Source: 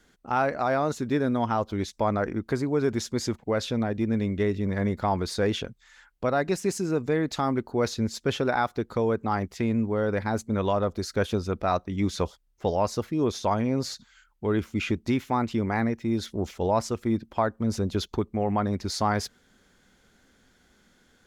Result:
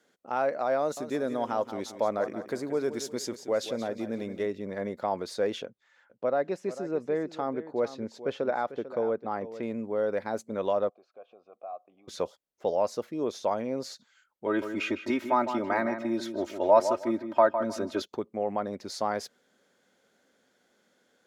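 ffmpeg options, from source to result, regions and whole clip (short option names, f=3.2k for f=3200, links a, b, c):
-filter_complex "[0:a]asettb=1/sr,asplit=3[a][b][c];[a]atrim=end=0.794[d];[b]atrim=start=0.79:end=4.46,asetpts=PTS-STARTPTS,afade=t=in:d=0.004:c=qsin,afade=t=out:st=3.666:d=0.004:c=qsin,highshelf=f=6.1k:g=9,aecho=1:1:178|356|534|712:0.266|0.0984|0.0364|0.0135,atrim=end_sample=161847[e];[c]atrim=start=4.456[f];[d][e]acrossfade=d=0.004:c1=hsin:c2=qsin[g];[g][f]acrossfade=d=0.004:c1=qsin:c2=hsin,asettb=1/sr,asplit=3[h][i][j];[h]atrim=end=5.654[k];[i]atrim=start=5.65:end=9.63,asetpts=PTS-STARTPTS,afade=t=in:d=0.004:c=qsin,afade=t=out:st=3.976:d=0.004:c=qsin,aemphasis=mode=reproduction:type=75kf,aecho=1:1:446:0.211,atrim=end_sample=175518[l];[j]atrim=start=9.626[m];[k][l]acrossfade=d=0.004:c1=hsin:c2=qsin[n];[n][m]acrossfade=d=0.004:c1=qsin:c2=hsin,asettb=1/sr,asplit=3[o][p][q];[o]atrim=end=10.894[r];[p]atrim=start=10.89:end=12.08,asetpts=PTS-STARTPTS,afade=t=in:d=0.004:c=qsin,afade=t=out:st=1.186:d=0.004:c=qsin,aemphasis=mode=reproduction:type=75fm,acompressor=threshold=-26dB:ratio=10:attack=3.2:release=140:knee=1:detection=peak,asplit=3[s][t][u];[s]bandpass=f=730:t=q:w=8,volume=0dB[v];[t]bandpass=f=1.09k:t=q:w=8,volume=-6dB[w];[u]bandpass=f=2.44k:t=q:w=8,volume=-9dB[x];[v][w][x]amix=inputs=3:normalize=0[y];[q]atrim=start=12.076[z];[r][y]acrossfade=d=0.004:c1=hsin:c2=qsin[aa];[aa][z]acrossfade=d=0.004:c1=qsin:c2=hsin,asettb=1/sr,asplit=3[ab][ac][ad];[ab]atrim=end=14.464[ae];[ac]atrim=start=14.46:end=18.02,asetpts=PTS-STARTPTS,afade=t=in:d=0.004:c=qsin,afade=t=out:st=3.556:d=0.004:c=qsin,equalizer=f=1.3k:t=o:w=1.7:g=7,aecho=1:1:3.2:0.84,atrim=end_sample=156996,asplit=2[af][ag];[ag]adelay=157,lowpass=f=2.4k:p=1,volume=-8.5dB,asplit=2[ah][ai];[ai]adelay=157,lowpass=f=2.4k:p=1,volume=0.24,asplit=2[aj][ak];[ak]adelay=157,lowpass=f=2.4k:p=1,volume=0.24[al];[af][ah][aj][al]amix=inputs=4:normalize=0,atrim=end_sample=156996[am];[ad]atrim=start=18.016[an];[ae][am]acrossfade=d=0.004:c1=hsin:c2=qsin[ao];[ao][an]acrossfade=d=0.004:c1=qsin:c2=hsin,highpass=220,equalizer=f=560:t=o:w=0.69:g=8.5,volume=-7dB"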